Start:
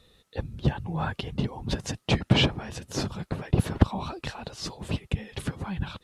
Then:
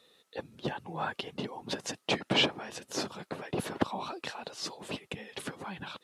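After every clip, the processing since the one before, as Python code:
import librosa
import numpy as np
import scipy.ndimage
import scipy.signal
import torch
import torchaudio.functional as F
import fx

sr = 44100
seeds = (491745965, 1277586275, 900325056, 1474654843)

y = scipy.signal.sosfilt(scipy.signal.butter(2, 310.0, 'highpass', fs=sr, output='sos'), x)
y = y * librosa.db_to_amplitude(-1.5)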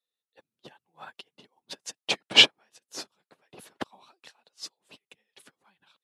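y = fx.tilt_eq(x, sr, slope=2.5)
y = fx.upward_expand(y, sr, threshold_db=-46.0, expansion=2.5)
y = y * librosa.db_to_amplitude(9.0)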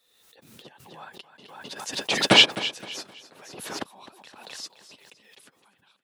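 y = fx.echo_feedback(x, sr, ms=259, feedback_pct=33, wet_db=-14.5)
y = fx.pre_swell(y, sr, db_per_s=44.0)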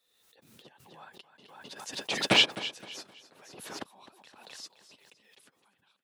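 y = fx.rattle_buzz(x, sr, strikes_db=-27.0, level_db=-7.0)
y = y * librosa.db_to_amplitude(-7.0)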